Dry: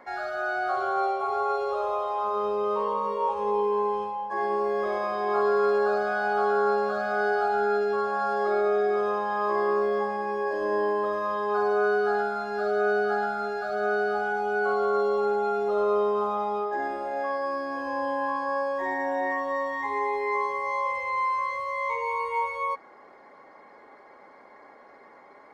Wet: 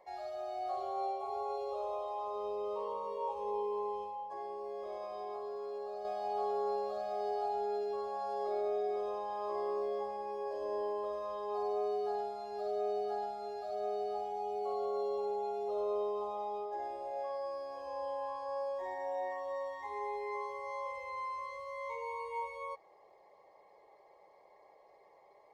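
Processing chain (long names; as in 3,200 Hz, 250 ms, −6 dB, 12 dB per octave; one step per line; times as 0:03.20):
0:04.21–0:06.05: downward compressor, threshold −28 dBFS, peak gain reduction 8 dB
phaser with its sweep stopped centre 610 Hz, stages 4
level −8 dB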